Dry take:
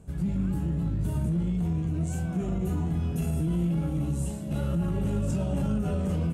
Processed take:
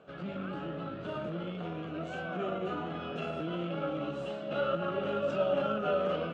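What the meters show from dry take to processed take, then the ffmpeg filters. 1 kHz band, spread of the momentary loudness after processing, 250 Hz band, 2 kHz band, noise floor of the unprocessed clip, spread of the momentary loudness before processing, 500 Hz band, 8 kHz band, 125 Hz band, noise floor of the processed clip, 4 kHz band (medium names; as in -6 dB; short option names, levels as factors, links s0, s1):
+7.0 dB, 8 LU, -9.5 dB, +7.5 dB, -33 dBFS, 2 LU, +6.0 dB, under -20 dB, -15.5 dB, -41 dBFS, no reading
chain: -af "highpass=500,equalizer=f=570:t=q:w=4:g=6,equalizer=f=940:t=q:w=4:g=-7,equalizer=f=1300:t=q:w=4:g=10,equalizer=f=2000:t=q:w=4:g=-5,equalizer=f=3000:t=q:w=4:g=4,lowpass=f=3600:w=0.5412,lowpass=f=3600:w=1.3066,volume=1.88"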